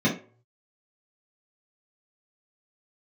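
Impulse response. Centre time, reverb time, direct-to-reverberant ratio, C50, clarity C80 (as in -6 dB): 25 ms, 0.40 s, -7.5 dB, 8.0 dB, 14.5 dB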